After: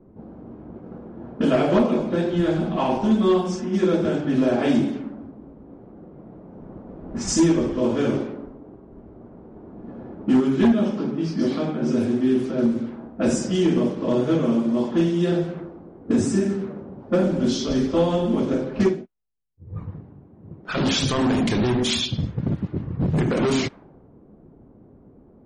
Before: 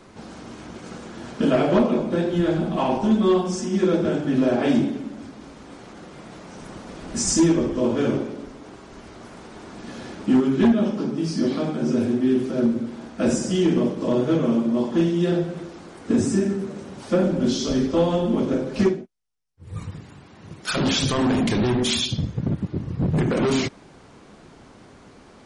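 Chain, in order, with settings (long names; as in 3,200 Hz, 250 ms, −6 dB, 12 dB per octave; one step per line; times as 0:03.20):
low-pass that shuts in the quiet parts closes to 380 Hz, open at −17 dBFS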